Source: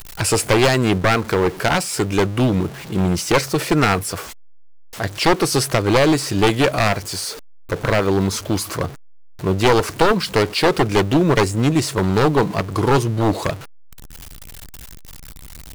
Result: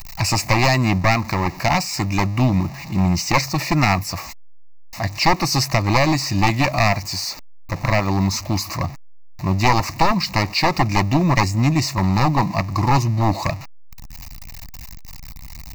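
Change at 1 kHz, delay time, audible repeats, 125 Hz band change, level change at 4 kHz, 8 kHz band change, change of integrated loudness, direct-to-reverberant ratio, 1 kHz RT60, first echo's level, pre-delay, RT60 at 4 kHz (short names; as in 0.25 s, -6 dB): +1.5 dB, none, none, +2.0 dB, 0.0 dB, -2.0 dB, -1.0 dB, none, none, none, none, none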